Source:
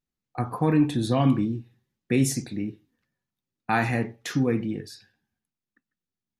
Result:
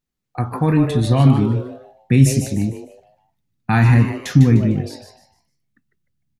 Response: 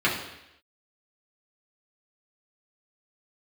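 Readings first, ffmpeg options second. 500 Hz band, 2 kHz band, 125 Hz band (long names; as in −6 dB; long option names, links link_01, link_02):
+5.0 dB, +5.0 dB, +13.5 dB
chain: -filter_complex "[0:a]asplit=5[link_01][link_02][link_03][link_04][link_05];[link_02]adelay=151,afreqshift=140,volume=-8dB[link_06];[link_03]adelay=302,afreqshift=280,volume=-17.9dB[link_07];[link_04]adelay=453,afreqshift=420,volume=-27.8dB[link_08];[link_05]adelay=604,afreqshift=560,volume=-37.7dB[link_09];[link_01][link_06][link_07][link_08][link_09]amix=inputs=5:normalize=0,asubboost=boost=8.5:cutoff=160,volume=4.5dB"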